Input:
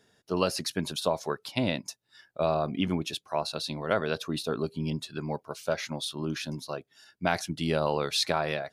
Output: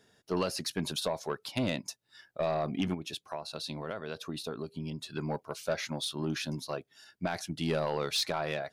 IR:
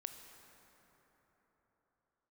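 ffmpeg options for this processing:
-filter_complex "[0:a]alimiter=limit=-15.5dB:level=0:latency=1:release=490,asplit=3[a][b][c];[a]afade=t=out:st=2.93:d=0.02[d];[b]acompressor=threshold=-34dB:ratio=6,afade=t=in:st=2.93:d=0.02,afade=t=out:st=5.05:d=0.02[e];[c]afade=t=in:st=5.05:d=0.02[f];[d][e][f]amix=inputs=3:normalize=0,asoftclip=type=tanh:threshold=-21.5dB"

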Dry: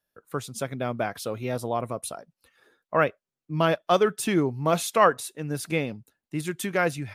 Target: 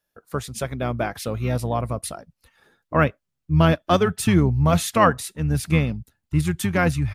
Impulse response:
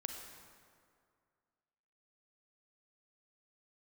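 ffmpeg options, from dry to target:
-filter_complex "[0:a]asplit=2[a][b];[b]asetrate=22050,aresample=44100,atempo=2,volume=-11dB[c];[a][c]amix=inputs=2:normalize=0,asubboost=boost=5:cutoff=170,volume=3dB"

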